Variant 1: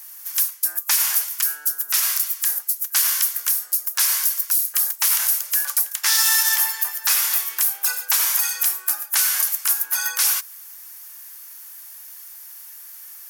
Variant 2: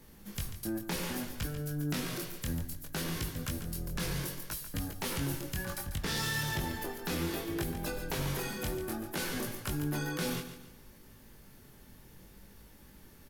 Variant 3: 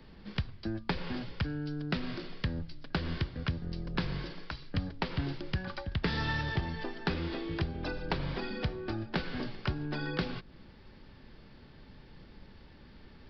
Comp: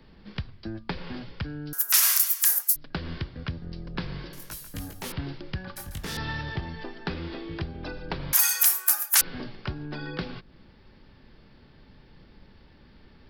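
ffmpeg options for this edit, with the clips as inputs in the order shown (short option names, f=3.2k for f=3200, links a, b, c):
-filter_complex "[0:a]asplit=2[a][b];[1:a]asplit=2[c][d];[2:a]asplit=5[e][f][g][h][i];[e]atrim=end=1.732[j];[a]atrim=start=1.728:end=2.762[k];[f]atrim=start=2.758:end=4.332[l];[c]atrim=start=4.328:end=5.122[m];[g]atrim=start=5.118:end=5.762[n];[d]atrim=start=5.758:end=6.172[o];[h]atrim=start=6.168:end=8.332[p];[b]atrim=start=8.328:end=9.212[q];[i]atrim=start=9.208[r];[j][k]acrossfade=d=0.004:c1=hsin:c2=hsin[s];[s][l]acrossfade=d=0.004:c1=hsin:c2=hsin[t];[t][m]acrossfade=d=0.004:c1=hsin:c2=hsin[u];[u][n]acrossfade=d=0.004:c1=hsin:c2=hsin[v];[v][o]acrossfade=d=0.004:c1=hsin:c2=hsin[w];[w][p]acrossfade=d=0.004:c1=hsin:c2=hsin[x];[x][q]acrossfade=d=0.004:c1=hsin:c2=hsin[y];[y][r]acrossfade=d=0.004:c1=hsin:c2=hsin"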